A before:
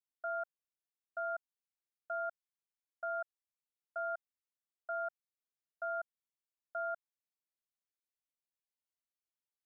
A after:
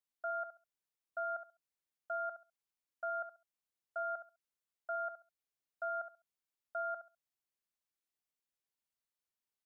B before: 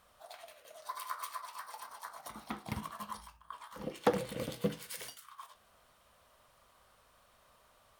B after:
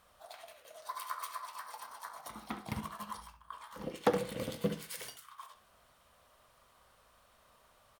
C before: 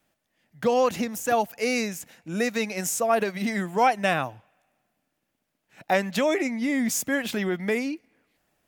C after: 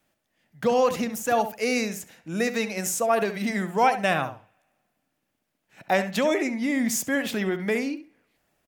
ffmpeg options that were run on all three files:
ffmpeg -i in.wav -filter_complex "[0:a]asplit=2[link_01][link_02];[link_02]adelay=68,lowpass=frequency=2700:poles=1,volume=-10dB,asplit=2[link_03][link_04];[link_04]adelay=68,lowpass=frequency=2700:poles=1,volume=0.21,asplit=2[link_05][link_06];[link_06]adelay=68,lowpass=frequency=2700:poles=1,volume=0.21[link_07];[link_01][link_03][link_05][link_07]amix=inputs=4:normalize=0" out.wav

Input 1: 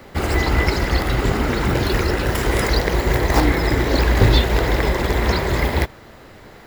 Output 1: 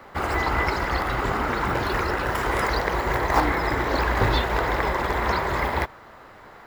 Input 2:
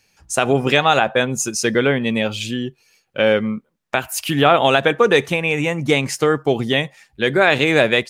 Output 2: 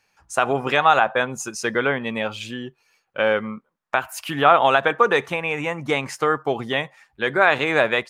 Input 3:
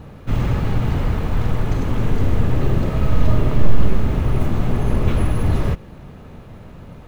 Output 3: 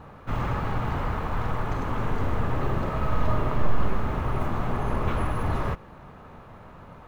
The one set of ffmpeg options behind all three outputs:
ffmpeg -i in.wav -af "equalizer=frequency=1100:width=0.74:gain=13,volume=-10dB" out.wav

